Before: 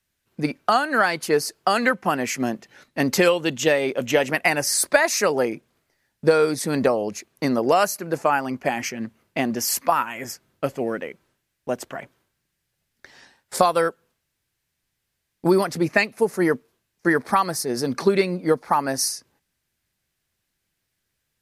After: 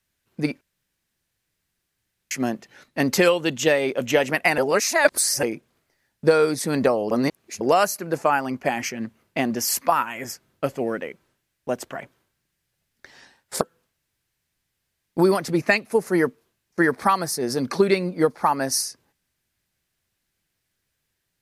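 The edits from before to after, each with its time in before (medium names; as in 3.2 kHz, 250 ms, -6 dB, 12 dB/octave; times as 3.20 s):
0.61–2.31 s: room tone
4.58–5.43 s: reverse
7.11–7.61 s: reverse
13.61–13.88 s: delete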